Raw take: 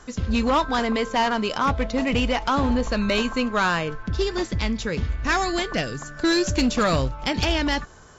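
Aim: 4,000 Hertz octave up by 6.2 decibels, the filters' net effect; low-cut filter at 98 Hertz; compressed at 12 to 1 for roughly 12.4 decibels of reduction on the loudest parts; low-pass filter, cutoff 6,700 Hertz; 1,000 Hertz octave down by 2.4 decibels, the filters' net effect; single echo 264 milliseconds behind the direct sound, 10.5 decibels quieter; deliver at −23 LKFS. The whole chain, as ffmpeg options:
ffmpeg -i in.wav -af "highpass=98,lowpass=6700,equalizer=frequency=1000:width_type=o:gain=-3.5,equalizer=frequency=4000:width_type=o:gain=8.5,acompressor=threshold=-28dB:ratio=12,aecho=1:1:264:0.299,volume=8.5dB" out.wav

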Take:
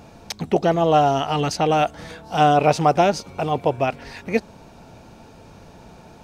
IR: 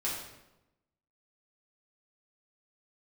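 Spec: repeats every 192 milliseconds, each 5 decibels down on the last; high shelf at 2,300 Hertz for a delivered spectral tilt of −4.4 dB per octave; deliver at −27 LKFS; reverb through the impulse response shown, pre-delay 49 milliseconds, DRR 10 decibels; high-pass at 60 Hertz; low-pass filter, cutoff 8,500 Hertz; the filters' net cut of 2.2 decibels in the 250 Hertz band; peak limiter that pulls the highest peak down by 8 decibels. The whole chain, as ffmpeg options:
-filter_complex "[0:a]highpass=60,lowpass=8500,equalizer=frequency=250:width_type=o:gain=-3.5,highshelf=frequency=2300:gain=5.5,alimiter=limit=-9.5dB:level=0:latency=1,aecho=1:1:192|384|576|768|960|1152|1344:0.562|0.315|0.176|0.0988|0.0553|0.031|0.0173,asplit=2[link_01][link_02];[1:a]atrim=start_sample=2205,adelay=49[link_03];[link_02][link_03]afir=irnorm=-1:irlink=0,volume=-15dB[link_04];[link_01][link_04]amix=inputs=2:normalize=0,volume=-7dB"

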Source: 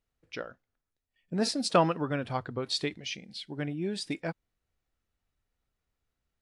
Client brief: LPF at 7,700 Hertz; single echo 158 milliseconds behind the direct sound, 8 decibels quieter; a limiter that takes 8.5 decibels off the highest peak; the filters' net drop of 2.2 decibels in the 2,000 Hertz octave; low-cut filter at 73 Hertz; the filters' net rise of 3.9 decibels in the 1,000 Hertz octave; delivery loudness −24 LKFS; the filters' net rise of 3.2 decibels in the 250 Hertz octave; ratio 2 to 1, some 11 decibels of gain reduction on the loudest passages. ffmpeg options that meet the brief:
ffmpeg -i in.wav -af "highpass=73,lowpass=7700,equalizer=frequency=250:width_type=o:gain=4,equalizer=frequency=1000:width_type=o:gain=6,equalizer=frequency=2000:width_type=o:gain=-5.5,acompressor=threshold=-35dB:ratio=2,alimiter=level_in=2.5dB:limit=-24dB:level=0:latency=1,volume=-2.5dB,aecho=1:1:158:0.398,volume=13.5dB" out.wav

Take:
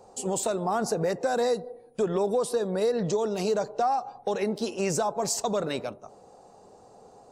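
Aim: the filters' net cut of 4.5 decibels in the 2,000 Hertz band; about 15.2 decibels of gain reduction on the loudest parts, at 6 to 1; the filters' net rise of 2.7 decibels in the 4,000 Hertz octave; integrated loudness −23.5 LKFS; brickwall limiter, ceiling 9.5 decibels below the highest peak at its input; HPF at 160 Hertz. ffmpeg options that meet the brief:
ffmpeg -i in.wav -af "highpass=160,equalizer=frequency=2000:width_type=o:gain=-8,equalizer=frequency=4000:width_type=o:gain=5,acompressor=threshold=-39dB:ratio=6,volume=21.5dB,alimiter=limit=-14dB:level=0:latency=1" out.wav

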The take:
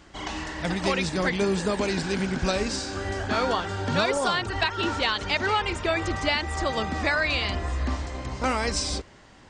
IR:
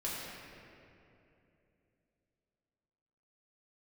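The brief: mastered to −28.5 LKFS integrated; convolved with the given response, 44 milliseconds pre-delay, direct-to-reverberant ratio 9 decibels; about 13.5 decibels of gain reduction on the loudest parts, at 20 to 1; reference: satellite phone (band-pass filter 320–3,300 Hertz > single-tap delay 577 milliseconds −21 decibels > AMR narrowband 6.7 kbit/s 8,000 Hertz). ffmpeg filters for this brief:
-filter_complex "[0:a]acompressor=threshold=-33dB:ratio=20,asplit=2[link_01][link_02];[1:a]atrim=start_sample=2205,adelay=44[link_03];[link_02][link_03]afir=irnorm=-1:irlink=0,volume=-13dB[link_04];[link_01][link_04]amix=inputs=2:normalize=0,highpass=320,lowpass=3300,aecho=1:1:577:0.0891,volume=13dB" -ar 8000 -c:a libopencore_amrnb -b:a 6700

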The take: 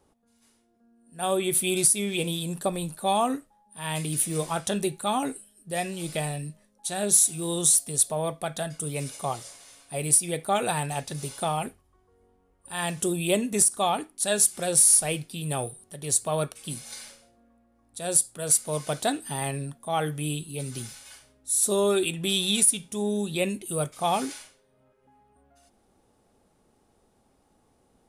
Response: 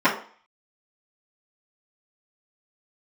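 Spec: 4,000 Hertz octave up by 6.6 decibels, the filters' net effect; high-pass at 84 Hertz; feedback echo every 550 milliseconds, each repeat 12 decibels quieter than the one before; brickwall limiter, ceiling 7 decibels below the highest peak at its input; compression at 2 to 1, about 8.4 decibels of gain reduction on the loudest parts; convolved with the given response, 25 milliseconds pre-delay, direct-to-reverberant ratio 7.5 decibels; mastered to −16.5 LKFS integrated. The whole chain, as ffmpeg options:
-filter_complex "[0:a]highpass=84,equalizer=frequency=4000:width_type=o:gain=8,acompressor=threshold=-30dB:ratio=2,alimiter=limit=-20.5dB:level=0:latency=1,aecho=1:1:550|1100|1650:0.251|0.0628|0.0157,asplit=2[link_01][link_02];[1:a]atrim=start_sample=2205,adelay=25[link_03];[link_02][link_03]afir=irnorm=-1:irlink=0,volume=-28dB[link_04];[link_01][link_04]amix=inputs=2:normalize=0,volume=15dB"

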